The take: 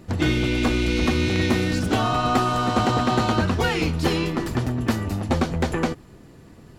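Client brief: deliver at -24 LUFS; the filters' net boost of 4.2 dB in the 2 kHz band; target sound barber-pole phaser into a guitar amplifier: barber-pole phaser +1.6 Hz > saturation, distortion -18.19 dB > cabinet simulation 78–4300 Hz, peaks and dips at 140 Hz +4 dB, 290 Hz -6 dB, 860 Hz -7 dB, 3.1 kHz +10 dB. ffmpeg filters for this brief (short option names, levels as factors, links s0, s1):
-filter_complex "[0:a]equalizer=f=2000:t=o:g=4,asplit=2[s0][s1];[s1]afreqshift=1.6[s2];[s0][s2]amix=inputs=2:normalize=1,asoftclip=threshold=0.158,highpass=78,equalizer=f=140:t=q:w=4:g=4,equalizer=f=290:t=q:w=4:g=-6,equalizer=f=860:t=q:w=4:g=-7,equalizer=f=3100:t=q:w=4:g=10,lowpass=f=4300:w=0.5412,lowpass=f=4300:w=1.3066,volume=1.19"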